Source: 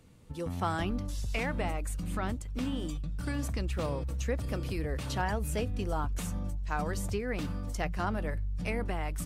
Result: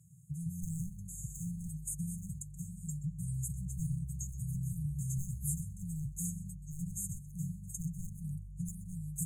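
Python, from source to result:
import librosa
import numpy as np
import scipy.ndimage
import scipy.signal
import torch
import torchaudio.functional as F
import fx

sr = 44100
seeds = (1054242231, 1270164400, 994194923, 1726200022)

y = scipy.signal.sosfilt(scipy.signal.butter(4, 90.0, 'highpass', fs=sr, output='sos'), x)
y = fx.high_shelf(y, sr, hz=12000.0, db=-4.5)
y = y + 0.77 * np.pad(y, (int(5.5 * sr / 1000.0), 0))[:len(y)]
y = 10.0 ** (-25.5 / 20.0) * (np.abs((y / 10.0 ** (-25.5 / 20.0) + 3.0) % 4.0 - 2.0) - 1.0)
y = fx.brickwall_bandstop(y, sr, low_hz=170.0, high_hz=6300.0)
y = y + 10.0 ** (-17.5 / 20.0) * np.pad(y, (int(127 * sr / 1000.0), 0))[:len(y)]
y = y * 10.0 ** (4.0 / 20.0)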